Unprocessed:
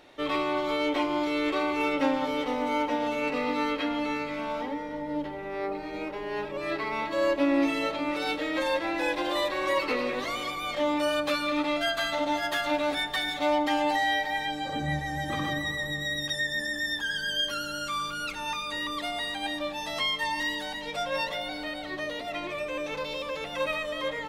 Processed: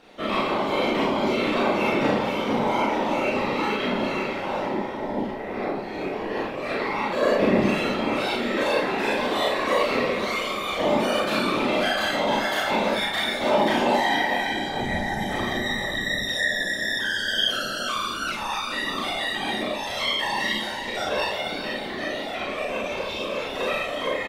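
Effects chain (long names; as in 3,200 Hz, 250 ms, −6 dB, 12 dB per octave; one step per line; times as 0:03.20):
single-tap delay 448 ms −10.5 dB
random phases in short frames
four-comb reverb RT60 0.33 s, combs from 29 ms, DRR −2 dB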